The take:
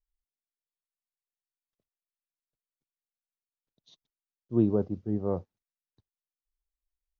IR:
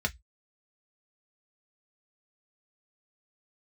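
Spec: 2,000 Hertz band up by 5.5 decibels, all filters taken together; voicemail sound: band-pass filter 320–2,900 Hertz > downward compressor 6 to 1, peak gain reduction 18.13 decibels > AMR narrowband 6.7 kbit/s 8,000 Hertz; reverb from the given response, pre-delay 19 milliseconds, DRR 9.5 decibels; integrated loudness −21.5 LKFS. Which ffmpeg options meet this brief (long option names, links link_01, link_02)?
-filter_complex "[0:a]equalizer=frequency=2000:width_type=o:gain=9,asplit=2[link_01][link_02];[1:a]atrim=start_sample=2205,adelay=19[link_03];[link_02][link_03]afir=irnorm=-1:irlink=0,volume=-16.5dB[link_04];[link_01][link_04]amix=inputs=2:normalize=0,highpass=320,lowpass=2900,acompressor=threshold=-42dB:ratio=6,volume=26dB" -ar 8000 -c:a libopencore_amrnb -b:a 6700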